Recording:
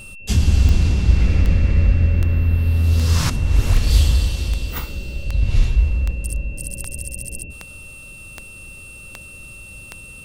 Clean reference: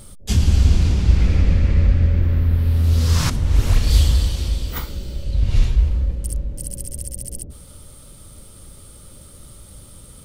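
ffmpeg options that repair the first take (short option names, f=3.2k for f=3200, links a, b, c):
-af "adeclick=t=4,bandreject=f=2.7k:w=30"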